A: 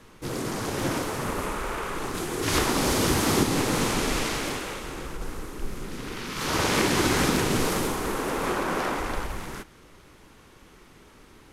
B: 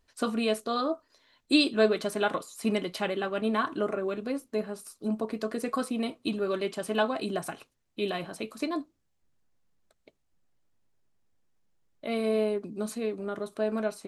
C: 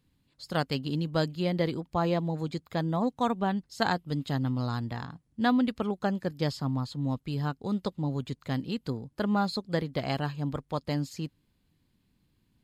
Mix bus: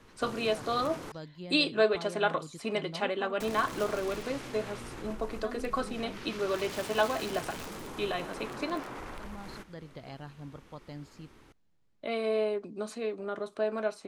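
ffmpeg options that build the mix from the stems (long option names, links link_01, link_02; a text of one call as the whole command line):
ffmpeg -i stem1.wav -i stem2.wav -i stem3.wav -filter_complex "[0:a]volume=-5.5dB,asplit=3[link_01][link_02][link_03];[link_01]atrim=end=1.12,asetpts=PTS-STARTPTS,afade=type=out:start_time=1.116:duration=0.004:curve=hsin[link_04];[link_02]atrim=start=1.12:end=3.4,asetpts=PTS-STARTPTS,volume=0[link_05];[link_03]atrim=start=3.4,asetpts=PTS-STARTPTS,afade=type=in:duration=0.004:curve=hsin[link_06];[link_04][link_05][link_06]concat=n=3:v=0:a=1[link_07];[1:a]lowpass=8200,acrossover=split=360|3000[link_08][link_09][link_10];[link_08]acompressor=threshold=-48dB:ratio=2.5[link_11];[link_11][link_09][link_10]amix=inputs=3:normalize=0,volume=0.5dB[link_12];[2:a]volume=-13dB[link_13];[link_07][link_13]amix=inputs=2:normalize=0,aeval=exprs='(mod(13.3*val(0)+1,2)-1)/13.3':channel_layout=same,alimiter=level_in=9dB:limit=-24dB:level=0:latency=1:release=60,volume=-9dB,volume=0dB[link_14];[link_12][link_14]amix=inputs=2:normalize=0,highshelf=frequency=6800:gain=-6.5" out.wav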